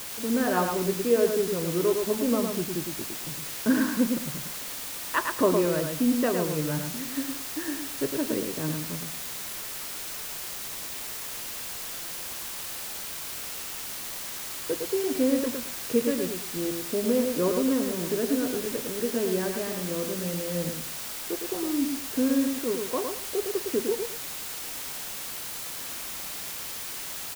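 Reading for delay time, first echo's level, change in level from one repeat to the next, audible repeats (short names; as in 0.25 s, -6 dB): 0.109 s, -5.0 dB, -13.0 dB, 2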